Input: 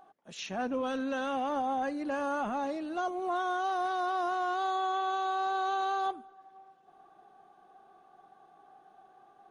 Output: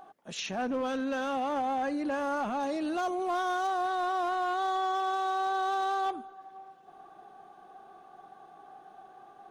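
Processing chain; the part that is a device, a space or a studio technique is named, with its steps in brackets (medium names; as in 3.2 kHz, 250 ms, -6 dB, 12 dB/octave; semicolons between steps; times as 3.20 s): clipper into limiter (hard clipper -27.5 dBFS, distortion -23 dB; peak limiter -32.5 dBFS, peak gain reduction 5 dB); 2.60–3.67 s: treble shelf 4.1 kHz +5.5 dB; trim +6.5 dB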